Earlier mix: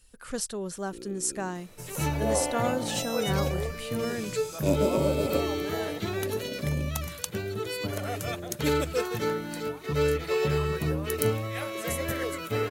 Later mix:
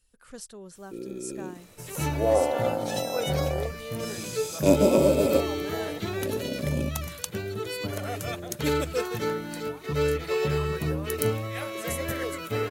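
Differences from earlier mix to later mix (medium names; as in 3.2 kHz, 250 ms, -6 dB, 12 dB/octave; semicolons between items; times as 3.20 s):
speech -10.0 dB; first sound +6.5 dB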